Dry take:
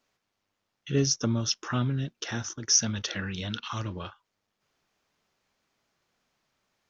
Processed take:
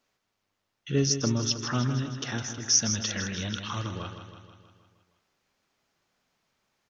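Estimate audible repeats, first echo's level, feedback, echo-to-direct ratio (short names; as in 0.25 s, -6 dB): 6, -9.0 dB, 59%, -7.0 dB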